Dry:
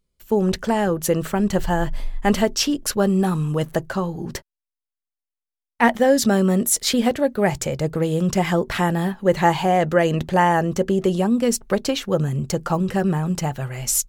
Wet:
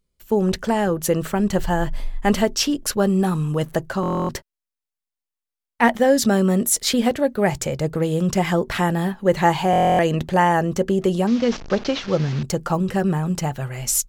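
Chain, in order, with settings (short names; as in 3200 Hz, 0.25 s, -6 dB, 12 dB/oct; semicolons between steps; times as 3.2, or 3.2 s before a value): 11.27–12.43 delta modulation 32 kbps, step -28.5 dBFS; stuck buffer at 4.01/9.71, samples 1024, times 11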